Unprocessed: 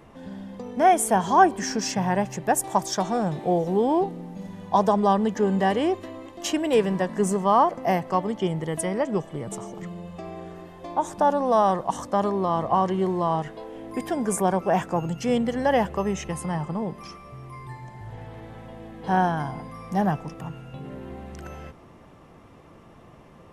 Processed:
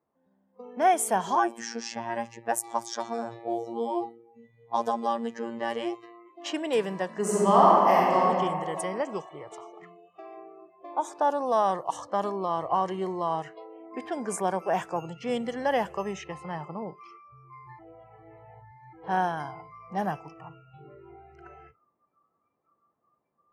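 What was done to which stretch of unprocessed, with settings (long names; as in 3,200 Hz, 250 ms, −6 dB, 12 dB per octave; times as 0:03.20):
0:01.35–0:06.29: phases set to zero 116 Hz
0:07.20–0:08.21: thrown reverb, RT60 2.4 s, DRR −5.5 dB
0:09.09–0:10.37: spectral tilt +1.5 dB per octave
0:17.79–0:18.93: reverse
whole clip: high-pass filter 380 Hz 6 dB per octave; noise reduction from a noise print of the clip's start 23 dB; low-pass that shuts in the quiet parts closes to 1,300 Hz, open at −21.5 dBFS; level −3 dB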